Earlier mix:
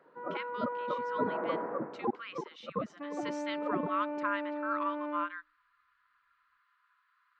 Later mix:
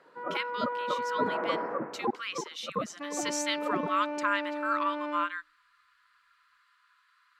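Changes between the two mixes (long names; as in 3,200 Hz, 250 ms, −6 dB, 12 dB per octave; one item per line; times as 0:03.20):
speech: add high-frequency loss of the air 54 metres
master: remove head-to-tape spacing loss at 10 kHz 39 dB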